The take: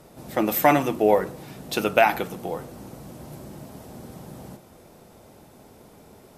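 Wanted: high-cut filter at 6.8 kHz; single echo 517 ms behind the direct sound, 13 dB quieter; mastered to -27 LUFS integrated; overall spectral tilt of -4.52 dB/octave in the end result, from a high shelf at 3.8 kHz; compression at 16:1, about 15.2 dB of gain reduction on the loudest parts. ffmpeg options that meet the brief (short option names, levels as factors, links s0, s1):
-af "lowpass=6800,highshelf=f=3800:g=-3,acompressor=threshold=0.0447:ratio=16,aecho=1:1:517:0.224,volume=2.82"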